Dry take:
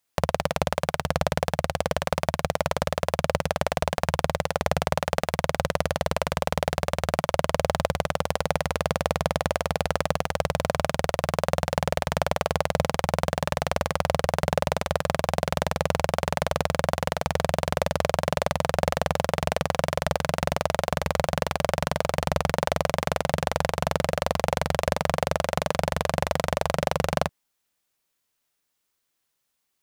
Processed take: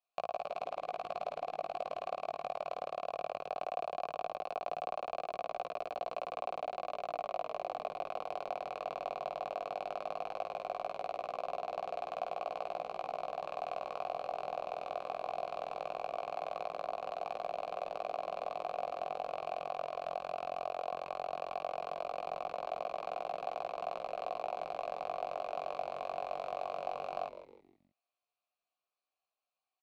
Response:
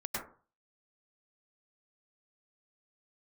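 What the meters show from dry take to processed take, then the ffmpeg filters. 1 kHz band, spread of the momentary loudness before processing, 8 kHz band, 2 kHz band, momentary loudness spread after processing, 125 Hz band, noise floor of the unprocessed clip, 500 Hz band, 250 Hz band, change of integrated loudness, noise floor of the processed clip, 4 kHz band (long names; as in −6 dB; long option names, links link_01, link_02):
−9.5 dB, 2 LU, below −30 dB, −20.0 dB, 1 LU, −34.0 dB, −77 dBFS, −12.5 dB, −25.5 dB, −13.5 dB, below −85 dBFS, −20.5 dB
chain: -filter_complex "[0:a]equalizer=frequency=4300:width=6.6:gain=10,acompressor=threshold=-25dB:ratio=6,flanger=delay=17:depth=3.6:speed=0.17,asplit=3[link_01][link_02][link_03];[link_01]bandpass=frequency=730:width_type=q:width=8,volume=0dB[link_04];[link_02]bandpass=frequency=1090:width_type=q:width=8,volume=-6dB[link_05];[link_03]bandpass=frequency=2440:width_type=q:width=8,volume=-9dB[link_06];[link_04][link_05][link_06]amix=inputs=3:normalize=0,asplit=5[link_07][link_08][link_09][link_10][link_11];[link_08]adelay=158,afreqshift=-120,volume=-12dB[link_12];[link_09]adelay=316,afreqshift=-240,volume=-20.4dB[link_13];[link_10]adelay=474,afreqshift=-360,volume=-28.8dB[link_14];[link_11]adelay=632,afreqshift=-480,volume=-37.2dB[link_15];[link_07][link_12][link_13][link_14][link_15]amix=inputs=5:normalize=0,volume=4.5dB"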